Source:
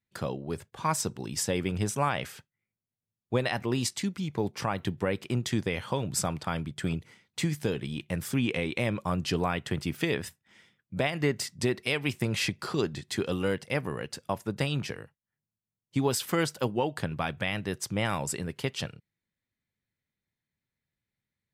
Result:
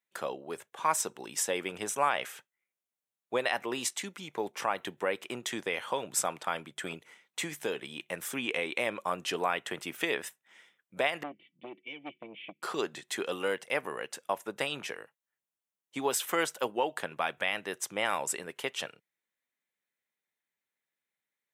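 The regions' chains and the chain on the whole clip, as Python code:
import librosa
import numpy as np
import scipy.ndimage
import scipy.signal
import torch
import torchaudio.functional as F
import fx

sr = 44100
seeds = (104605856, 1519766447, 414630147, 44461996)

y = fx.chain(x, sr, fx.formant_cascade(vowel='i'),
    fx.comb(ms=6.0, depth=0.55),
    fx.transformer_sat(knee_hz=660.0), at=(11.23, 12.63))
y = scipy.signal.sosfilt(scipy.signal.butter(2, 490.0, 'highpass', fs=sr, output='sos'), y)
y = fx.peak_eq(y, sr, hz=4700.0, db=-9.5, octaves=0.37)
y = y * librosa.db_to_amplitude(1.5)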